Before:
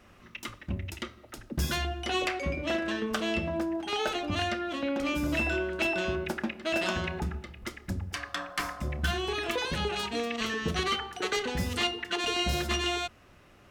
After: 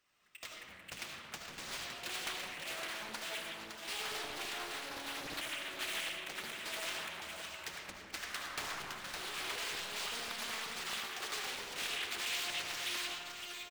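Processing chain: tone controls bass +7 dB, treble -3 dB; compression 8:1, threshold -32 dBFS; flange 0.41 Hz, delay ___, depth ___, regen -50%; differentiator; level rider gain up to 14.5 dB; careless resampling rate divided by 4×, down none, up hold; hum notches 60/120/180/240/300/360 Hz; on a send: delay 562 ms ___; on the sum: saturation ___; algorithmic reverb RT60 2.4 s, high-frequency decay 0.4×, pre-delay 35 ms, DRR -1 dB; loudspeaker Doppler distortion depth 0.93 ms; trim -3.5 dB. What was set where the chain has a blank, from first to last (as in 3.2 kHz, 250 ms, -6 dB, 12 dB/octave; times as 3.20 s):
0.6 ms, 6 ms, -7 dB, -26.5 dBFS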